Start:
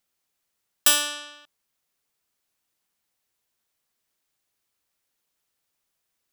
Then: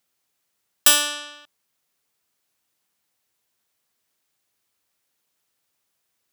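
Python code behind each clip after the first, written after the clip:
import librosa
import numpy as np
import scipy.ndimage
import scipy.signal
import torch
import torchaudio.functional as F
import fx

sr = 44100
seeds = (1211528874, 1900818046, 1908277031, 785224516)

y = scipy.signal.sosfilt(scipy.signal.butter(2, 68.0, 'highpass', fs=sr, output='sos'), x)
y = y * 10.0 ** (3.5 / 20.0)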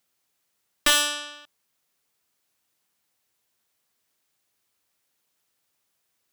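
y = fx.slew_limit(x, sr, full_power_hz=740.0)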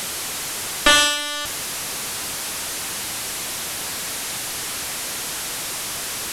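y = fx.delta_mod(x, sr, bps=64000, step_db=-28.5)
y = y * 10.0 ** (8.0 / 20.0)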